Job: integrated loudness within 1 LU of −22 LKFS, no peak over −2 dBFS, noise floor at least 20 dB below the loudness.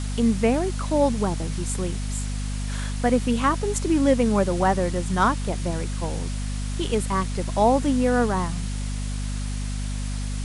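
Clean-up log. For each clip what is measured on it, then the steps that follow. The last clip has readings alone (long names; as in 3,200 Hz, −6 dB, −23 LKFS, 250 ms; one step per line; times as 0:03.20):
mains hum 50 Hz; hum harmonics up to 250 Hz; level of the hum −25 dBFS; background noise floor −28 dBFS; target noise floor −45 dBFS; integrated loudness −24.5 LKFS; sample peak −7.0 dBFS; target loudness −22.0 LKFS
→ hum removal 50 Hz, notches 5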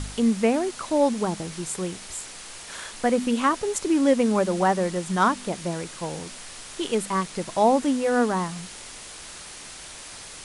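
mains hum none found; background noise floor −41 dBFS; target noise floor −45 dBFS
→ broadband denoise 6 dB, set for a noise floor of −41 dBFS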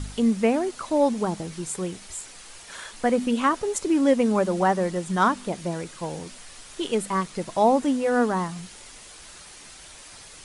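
background noise floor −45 dBFS; integrated loudness −24.5 LKFS; sample peak −8.0 dBFS; target loudness −22.0 LKFS
→ level +2.5 dB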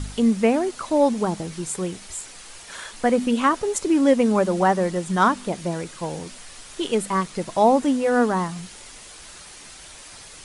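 integrated loudness −22.0 LKFS; sample peak −5.5 dBFS; background noise floor −43 dBFS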